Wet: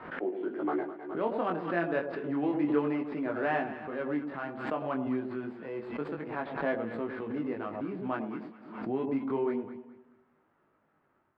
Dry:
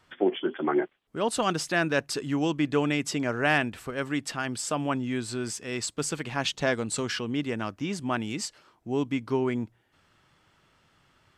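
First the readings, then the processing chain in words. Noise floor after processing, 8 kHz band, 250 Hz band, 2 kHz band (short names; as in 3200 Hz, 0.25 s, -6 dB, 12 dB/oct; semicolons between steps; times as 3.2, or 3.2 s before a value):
-72 dBFS, under -40 dB, -3.0 dB, -8.0 dB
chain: median filter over 15 samples; three-band isolator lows -17 dB, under 200 Hz, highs -12 dB, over 4000 Hz; de-hum 238.6 Hz, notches 12; AGC gain up to 7.5 dB; chorus 0.29 Hz, delay 18.5 ms, depth 4.8 ms; air absorption 430 m; on a send: echo with dull and thin repeats by turns 0.104 s, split 880 Hz, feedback 54%, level -7 dB; on the sum: backwards sustainer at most 70 dB/s; gain -6.5 dB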